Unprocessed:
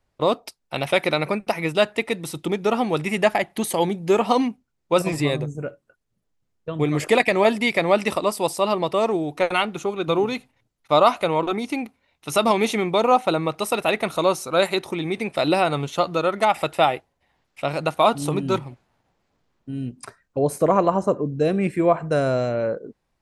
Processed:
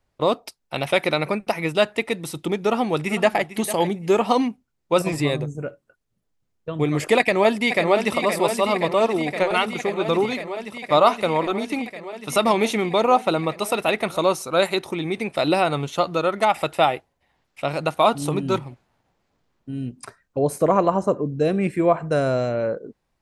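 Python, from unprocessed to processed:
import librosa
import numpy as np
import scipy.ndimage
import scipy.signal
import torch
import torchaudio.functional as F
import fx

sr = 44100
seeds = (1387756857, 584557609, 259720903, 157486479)

y = fx.echo_throw(x, sr, start_s=2.64, length_s=0.88, ms=450, feedback_pct=15, wet_db=-13.5)
y = fx.echo_throw(y, sr, start_s=7.18, length_s=0.99, ms=520, feedback_pct=85, wet_db=-8.0)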